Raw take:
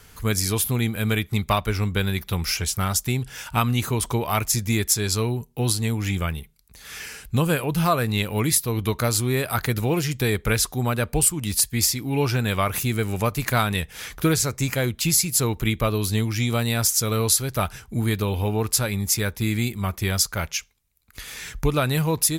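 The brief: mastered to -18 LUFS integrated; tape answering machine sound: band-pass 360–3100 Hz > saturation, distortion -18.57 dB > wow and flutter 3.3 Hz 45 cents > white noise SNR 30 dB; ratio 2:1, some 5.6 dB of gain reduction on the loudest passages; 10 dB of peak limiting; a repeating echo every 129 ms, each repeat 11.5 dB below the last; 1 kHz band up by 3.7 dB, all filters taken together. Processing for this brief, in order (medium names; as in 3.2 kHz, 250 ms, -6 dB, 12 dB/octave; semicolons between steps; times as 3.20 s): peaking EQ 1 kHz +5 dB; compression 2:1, threshold -24 dBFS; peak limiter -17.5 dBFS; band-pass 360–3100 Hz; feedback delay 129 ms, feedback 27%, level -11.5 dB; saturation -21 dBFS; wow and flutter 3.3 Hz 45 cents; white noise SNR 30 dB; trim +16.5 dB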